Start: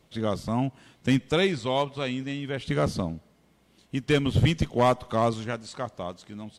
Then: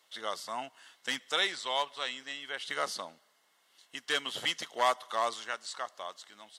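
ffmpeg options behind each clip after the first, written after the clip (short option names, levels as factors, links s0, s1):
-af "highpass=1100,bandreject=f=2400:w=5.9,volume=1.19"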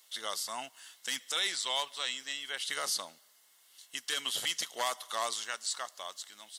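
-af "crystalizer=i=4.5:c=0,alimiter=limit=0.158:level=0:latency=1:release=26,volume=0.596"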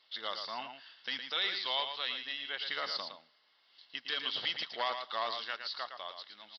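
-filter_complex "[0:a]asplit=2[s0][s1];[s1]aecho=0:1:113:0.422[s2];[s0][s2]amix=inputs=2:normalize=0,aresample=11025,aresample=44100,volume=0.891"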